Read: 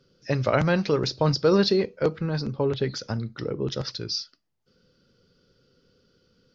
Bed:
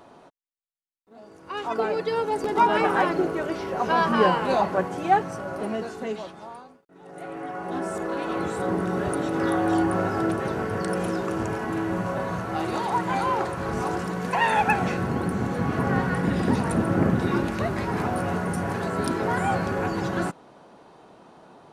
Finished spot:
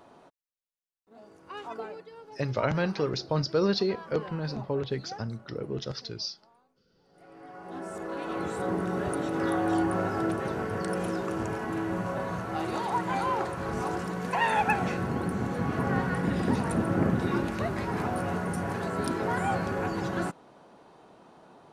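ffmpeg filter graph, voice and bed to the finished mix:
ffmpeg -i stem1.wav -i stem2.wav -filter_complex "[0:a]adelay=2100,volume=-5.5dB[link_01];[1:a]volume=14dB,afade=type=out:start_time=1.18:duration=0.91:silence=0.125893,afade=type=in:start_time=7.08:duration=1.47:silence=0.11885[link_02];[link_01][link_02]amix=inputs=2:normalize=0" out.wav

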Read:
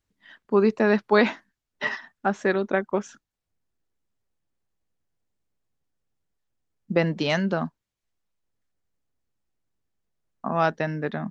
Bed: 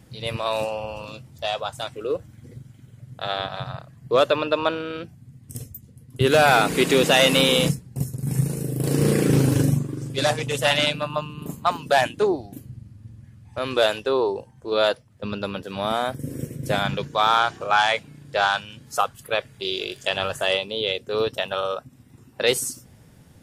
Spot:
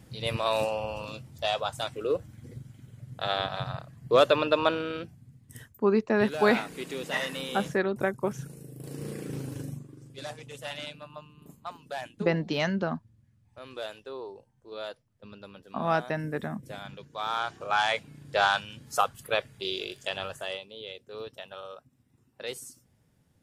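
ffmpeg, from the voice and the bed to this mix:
ffmpeg -i stem1.wav -i stem2.wav -filter_complex "[0:a]adelay=5300,volume=-4dB[link_01];[1:a]volume=13dB,afade=type=out:start_time=4.84:duration=0.88:silence=0.158489,afade=type=in:start_time=17.05:duration=1.29:silence=0.177828,afade=type=out:start_time=19.27:duration=1.4:silence=0.211349[link_02];[link_01][link_02]amix=inputs=2:normalize=0" out.wav

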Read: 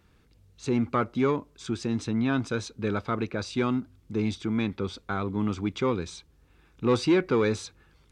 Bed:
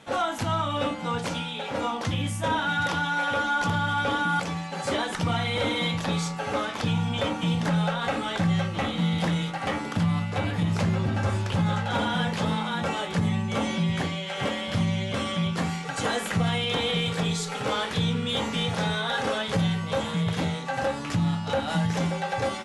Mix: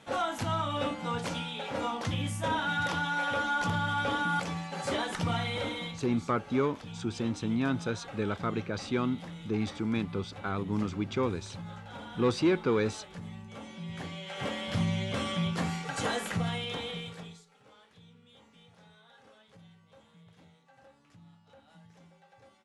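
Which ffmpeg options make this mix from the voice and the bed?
ffmpeg -i stem1.wav -i stem2.wav -filter_complex "[0:a]adelay=5350,volume=-3.5dB[link_01];[1:a]volume=9.5dB,afade=type=out:start_time=5.36:duration=0.7:silence=0.211349,afade=type=in:start_time=13.75:duration=1.06:silence=0.199526,afade=type=out:start_time=16.02:duration=1.43:silence=0.0421697[link_02];[link_01][link_02]amix=inputs=2:normalize=0" out.wav

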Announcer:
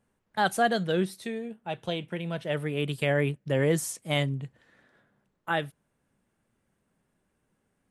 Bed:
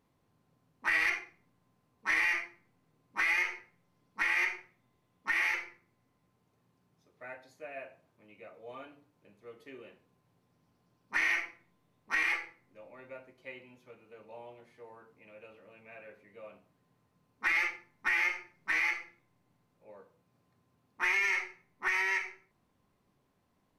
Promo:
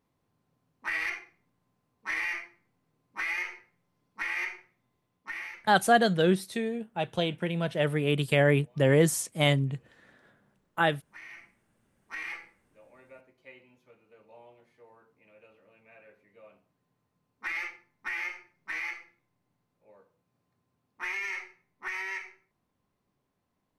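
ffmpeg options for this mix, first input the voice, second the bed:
ffmpeg -i stem1.wav -i stem2.wav -filter_complex "[0:a]adelay=5300,volume=3dB[link_01];[1:a]volume=10dB,afade=type=out:start_time=5.01:duration=0.65:silence=0.177828,afade=type=in:start_time=11.3:duration=1.49:silence=0.223872[link_02];[link_01][link_02]amix=inputs=2:normalize=0" out.wav

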